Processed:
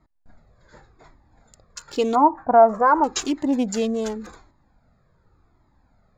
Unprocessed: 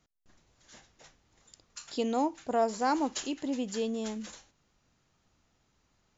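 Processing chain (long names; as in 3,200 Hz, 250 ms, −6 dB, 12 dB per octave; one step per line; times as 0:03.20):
adaptive Wiener filter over 15 samples
0:02.15–0:03.04: drawn EQ curve 390 Hz 0 dB, 1,200 Hz +11 dB, 3,300 Hz −22 dB
in parallel at +2.5 dB: brickwall limiter −22.5 dBFS, peak gain reduction 11.5 dB
on the sum: flanger whose copies keep moving one way falling 0.89 Hz
level +8 dB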